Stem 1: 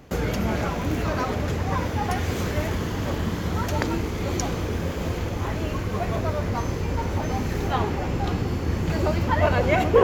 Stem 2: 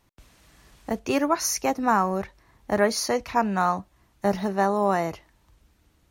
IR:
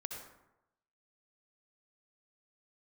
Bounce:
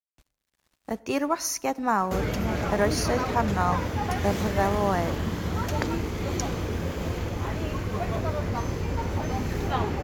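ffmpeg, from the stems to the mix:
-filter_complex "[0:a]adelay=2000,volume=-2.5dB[a];[1:a]aeval=exprs='sgn(val(0))*max(abs(val(0))-0.00335,0)':c=same,volume=-3.5dB,asplit=2[b][c];[c]volume=-17dB[d];[2:a]atrim=start_sample=2205[e];[d][e]afir=irnorm=-1:irlink=0[f];[a][b][f]amix=inputs=3:normalize=0"

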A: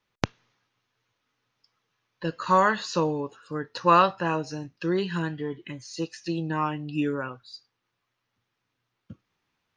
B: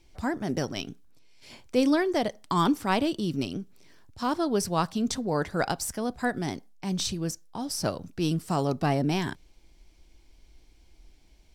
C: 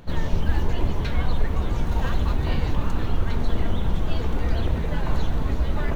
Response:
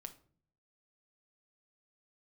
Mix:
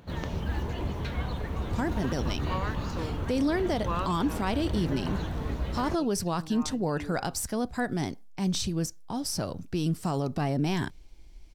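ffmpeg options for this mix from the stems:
-filter_complex "[0:a]volume=-14.5dB[a];[1:a]lowshelf=f=120:g=7.5,adelay=1550,volume=0dB[b];[2:a]highpass=56,volume=-5dB[c];[a][b][c]amix=inputs=3:normalize=0,alimiter=limit=-18.5dB:level=0:latency=1:release=62"

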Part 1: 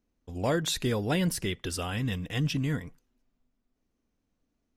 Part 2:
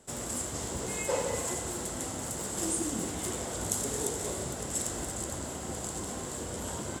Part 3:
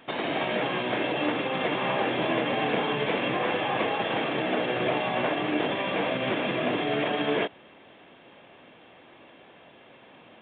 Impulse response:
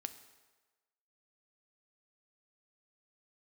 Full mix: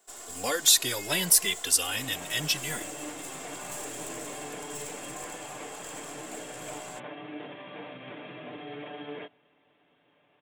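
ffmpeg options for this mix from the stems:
-filter_complex "[0:a]highpass=f=630:p=1,crystalizer=i=5:c=0,asplit=2[a][b];[b]adelay=2.6,afreqshift=0.77[c];[a][c]amix=inputs=2:normalize=1,volume=2.5dB[d];[1:a]highpass=630,aecho=1:1:2.8:0.64,aeval=exprs='(tanh(39.8*val(0)+0.55)-tanh(0.55))/39.8':c=same,volume=-3dB[e];[2:a]aecho=1:1:6.8:0.58,adelay=1800,volume=-17.5dB,asplit=2[f][g];[g]volume=-13.5dB[h];[3:a]atrim=start_sample=2205[i];[h][i]afir=irnorm=-1:irlink=0[j];[d][e][f][j]amix=inputs=4:normalize=0"

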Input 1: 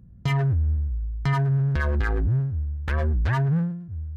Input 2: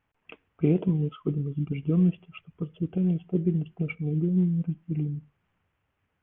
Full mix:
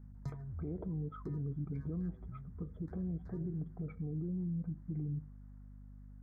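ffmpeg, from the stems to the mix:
-filter_complex "[0:a]acrossover=split=170[a][b];[b]acompressor=threshold=-39dB:ratio=2.5[c];[a][c]amix=inputs=2:normalize=0,volume=-14dB[d];[1:a]acompressor=threshold=-25dB:ratio=6,alimiter=level_in=7dB:limit=-24dB:level=0:latency=1:release=80,volume=-7dB,volume=-1.5dB,asplit=2[e][f];[f]apad=whole_len=183695[g];[d][g]sidechaincompress=threshold=-49dB:ratio=10:attack=8.7:release=1270[h];[h][e]amix=inputs=2:normalize=0,aeval=exprs='val(0)+0.00282*(sin(2*PI*50*n/s)+sin(2*PI*2*50*n/s)/2+sin(2*PI*3*50*n/s)/3+sin(2*PI*4*50*n/s)/4+sin(2*PI*5*50*n/s)/5)':c=same,asuperstop=centerf=2800:order=4:qfactor=1"

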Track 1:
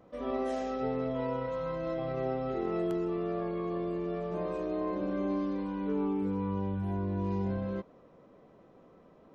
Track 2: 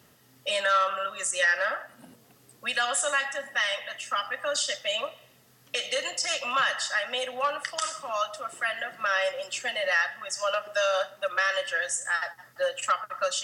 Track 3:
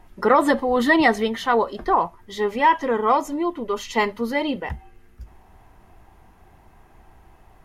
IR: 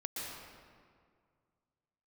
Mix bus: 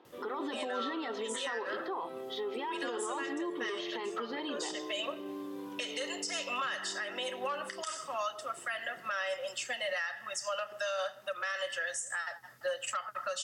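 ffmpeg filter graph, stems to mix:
-filter_complex "[0:a]alimiter=level_in=7dB:limit=-24dB:level=0:latency=1,volume=-7dB,volume=-2dB[a];[1:a]adelay=50,volume=-2.5dB[b];[2:a]alimiter=limit=-16dB:level=0:latency=1,volume=-7.5dB,asplit=2[c][d];[d]apad=whole_len=594903[e];[b][e]sidechaincompress=threshold=-42dB:ratio=5:attack=6.7:release=218[f];[a][c]amix=inputs=2:normalize=0,highpass=f=290:w=0.5412,highpass=f=290:w=1.3066,equalizer=f=380:t=q:w=4:g=5,equalizer=f=610:t=q:w=4:g=-9,equalizer=f=2k:t=q:w=4:g=-5,equalizer=f=3.5k:t=q:w=4:g=8,lowpass=f=5k:w=0.5412,lowpass=f=5k:w=1.3066,alimiter=level_in=5.5dB:limit=-24dB:level=0:latency=1:release=55,volume=-5.5dB,volume=0dB[g];[f][g]amix=inputs=2:normalize=0,alimiter=level_in=2dB:limit=-24dB:level=0:latency=1:release=194,volume=-2dB"

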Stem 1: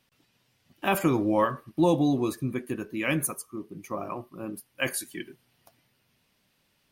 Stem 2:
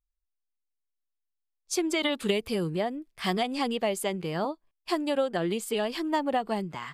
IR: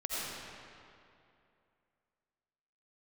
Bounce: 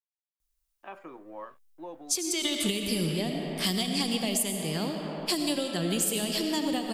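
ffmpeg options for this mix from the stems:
-filter_complex "[0:a]highpass=450,aeval=exprs='sgn(val(0))*max(abs(val(0))-0.00596,0)':c=same,lowpass=1.5k,volume=-14.5dB[a];[1:a]adelay=400,volume=1dB,asplit=2[b][c];[c]volume=-5.5dB[d];[2:a]atrim=start_sample=2205[e];[d][e]afir=irnorm=-1:irlink=0[f];[a][b][f]amix=inputs=3:normalize=0,highshelf=f=3.9k:g=11,acrossover=split=290|3000[g][h][i];[h]acompressor=threshold=-37dB:ratio=4[j];[g][j][i]amix=inputs=3:normalize=0,alimiter=limit=-15.5dB:level=0:latency=1:release=394"

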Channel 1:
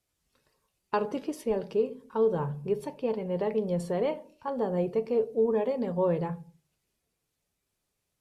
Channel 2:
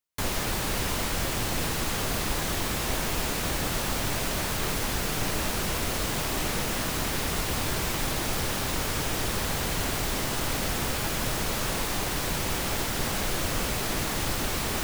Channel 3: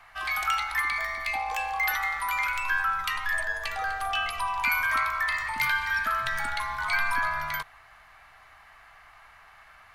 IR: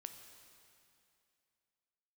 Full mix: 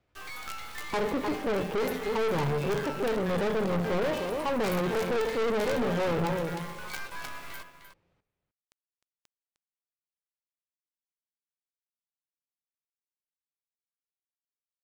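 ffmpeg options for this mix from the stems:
-filter_complex "[0:a]lowpass=2.2k,acontrast=84,volume=2.5dB,asplit=3[a][b][c];[b]volume=-4dB[d];[c]volume=-10dB[e];[2:a]acrusher=bits=4:dc=4:mix=0:aa=0.000001,volume=-2.5dB,asplit=2[f][g];[g]volume=-13.5dB[h];[a]alimiter=limit=-13dB:level=0:latency=1,volume=0dB[i];[3:a]atrim=start_sample=2205[j];[d][j]afir=irnorm=-1:irlink=0[k];[e][h]amix=inputs=2:normalize=0,aecho=0:1:306:1[l];[f][i][k][l]amix=inputs=4:normalize=0,aeval=exprs='(tanh(20*val(0)+0.45)-tanh(0.45))/20':c=same"

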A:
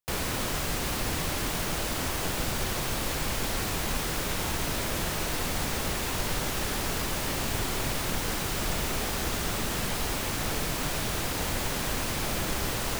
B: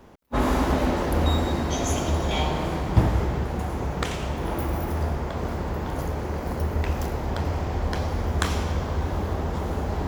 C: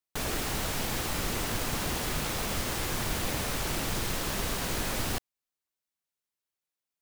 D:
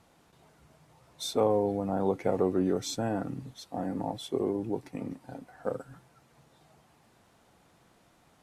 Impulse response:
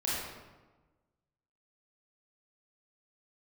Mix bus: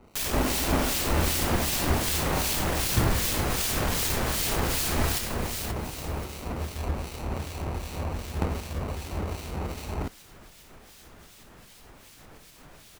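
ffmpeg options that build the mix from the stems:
-filter_complex "[0:a]alimiter=level_in=3dB:limit=-24dB:level=0:latency=1:release=420,volume=-3dB,adelay=1800,volume=-10dB[a];[1:a]acrusher=samples=26:mix=1:aa=0.000001,volume=-3dB[b];[2:a]acrusher=bits=4:mix=0:aa=0.000001,volume=1dB,asplit=3[c][d][e];[d]volume=-9.5dB[f];[e]volume=-3dB[g];[4:a]atrim=start_sample=2205[h];[f][h]afir=irnorm=-1:irlink=0[i];[g]aecho=0:1:531|1062|1593|2124|2655|3186:1|0.42|0.176|0.0741|0.0311|0.0131[j];[a][b][c][i][j]amix=inputs=5:normalize=0,acrossover=split=2200[k][l];[k]aeval=exprs='val(0)*(1-0.7/2+0.7/2*cos(2*PI*2.6*n/s))':c=same[m];[l]aeval=exprs='val(0)*(1-0.7/2-0.7/2*cos(2*PI*2.6*n/s))':c=same[n];[m][n]amix=inputs=2:normalize=0"

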